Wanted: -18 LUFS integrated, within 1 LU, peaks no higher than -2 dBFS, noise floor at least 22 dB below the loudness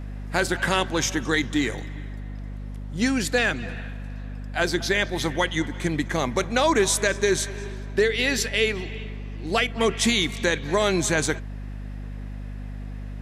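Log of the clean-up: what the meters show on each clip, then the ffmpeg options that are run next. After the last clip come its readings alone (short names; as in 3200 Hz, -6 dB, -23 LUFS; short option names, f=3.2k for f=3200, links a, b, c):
hum 50 Hz; harmonics up to 250 Hz; hum level -31 dBFS; loudness -23.5 LUFS; peak -6.5 dBFS; loudness target -18.0 LUFS
-> -af "bandreject=f=50:t=h:w=4,bandreject=f=100:t=h:w=4,bandreject=f=150:t=h:w=4,bandreject=f=200:t=h:w=4,bandreject=f=250:t=h:w=4"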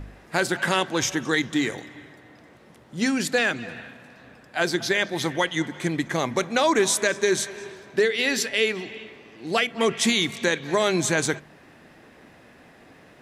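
hum none; loudness -24.0 LUFS; peak -7.0 dBFS; loudness target -18.0 LUFS
-> -af "volume=6dB,alimiter=limit=-2dB:level=0:latency=1"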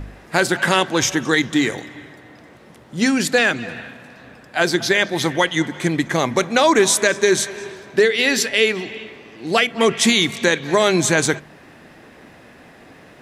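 loudness -18.0 LUFS; peak -2.0 dBFS; noise floor -46 dBFS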